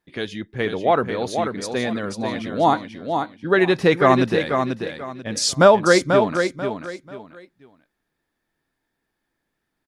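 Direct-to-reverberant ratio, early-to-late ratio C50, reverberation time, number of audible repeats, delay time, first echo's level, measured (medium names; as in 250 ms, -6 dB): no reverb, no reverb, no reverb, 3, 489 ms, -6.0 dB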